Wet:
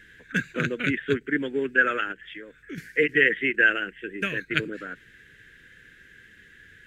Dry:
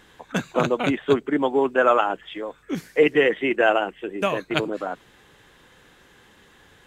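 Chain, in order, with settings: EQ curve 110 Hz 0 dB, 470 Hz -7 dB, 780 Hz -29 dB, 1100 Hz -21 dB, 1600 Hz +8 dB, 3800 Hz -6 dB; 2.12–2.78 compressor 2:1, threshold -40 dBFS, peak gain reduction 7.5 dB; ending taper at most 510 dB/s

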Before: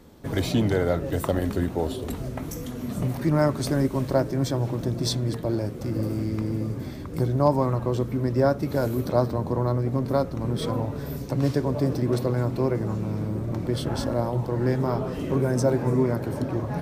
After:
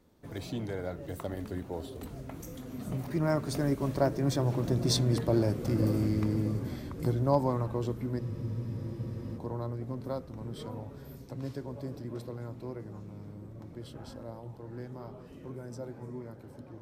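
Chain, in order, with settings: Doppler pass-by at 5.52, 12 m/s, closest 13 m; spectral freeze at 8.23, 1.14 s

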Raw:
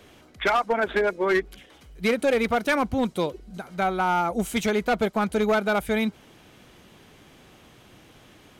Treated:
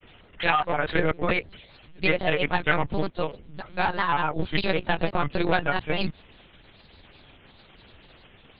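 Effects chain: trilling pitch shifter +2.5 st, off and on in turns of 0.43 s; high shelf 3000 Hz +11.5 dB; monotone LPC vocoder at 8 kHz 170 Hz; grains, grains 20/s, spray 13 ms, pitch spread up and down by 3 st

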